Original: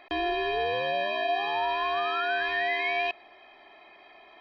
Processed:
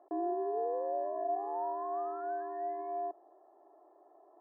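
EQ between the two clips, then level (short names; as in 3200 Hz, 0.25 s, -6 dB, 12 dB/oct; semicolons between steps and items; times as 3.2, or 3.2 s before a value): Gaussian blur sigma 9.8 samples; elliptic high-pass 310 Hz, stop band 40 dB; air absorption 460 m; 0.0 dB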